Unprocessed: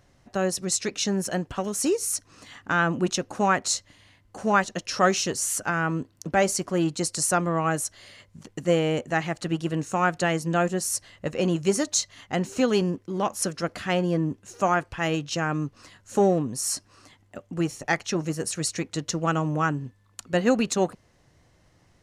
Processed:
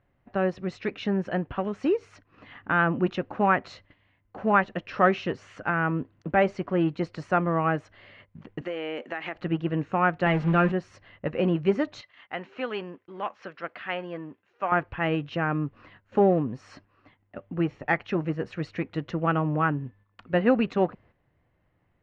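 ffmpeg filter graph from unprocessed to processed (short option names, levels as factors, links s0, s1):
-filter_complex "[0:a]asettb=1/sr,asplit=3[s0][s1][s2];[s0]atrim=end=8.614[s3];[s1]atrim=start=8.61:end=9.35,asetpts=PTS-STARTPTS,afade=t=in:d=0.004:c=qsin,afade=t=out:st=0.736:d=0.004:c=qsin,highpass=f=240:w=0.5412,highpass=f=240:w=1.3066,highshelf=f=2100:g=11.5,acompressor=threshold=0.0447:ratio=10:attack=3.2:release=140:knee=1:detection=peak[s4];[s2]atrim=start=9.346[s5];[s3][s4]acrossfade=d=0.004:c1=hsin:c2=qsin[s6];[s6][s5]acrossfade=d=0.004:c1=qsin:c2=hsin,asettb=1/sr,asplit=3[s7][s8][s9];[s7]atrim=end=10.264[s10];[s8]atrim=start=10.26:end=10.72,asetpts=PTS-STARTPTS,afade=t=in:d=0.004:c=qsin,afade=t=out:st=0.456:d=0.004:c=qsin,aeval=exprs='val(0)+0.5*0.0355*sgn(val(0))':c=same,bandreject=f=3100:w=27,aecho=1:1:5:0.47,atrim=end_sample=20286[s11];[s9]atrim=start=10.716[s12];[s10][s11]acrossfade=d=0.004:c1=hsin:c2=qsin[s13];[s13][s12]acrossfade=d=0.004:c1=qsin:c2=hsin,asettb=1/sr,asplit=3[s14][s15][s16];[s14]atrim=end=12.014[s17];[s15]atrim=start=12.01:end=14.72,asetpts=PTS-STARTPTS,afade=t=in:d=0.004:c=qsin,afade=t=out:st=2.706:d=0.004:c=qsin,highpass=f=1200:p=1,acrossover=split=5800[s18][s19];[s19]acompressor=threshold=0.00224:ratio=4:attack=1:release=60[s20];[s18][s20]amix=inputs=2:normalize=0[s21];[s16]atrim=start=14.716[s22];[s17][s21]acrossfade=d=0.004:c1=hsin:c2=qsin[s23];[s23][s22]acrossfade=d=0.004:c1=qsin:c2=hsin,lowpass=f=2700:w=0.5412,lowpass=f=2700:w=1.3066,agate=range=0.355:threshold=0.00224:ratio=16:detection=peak"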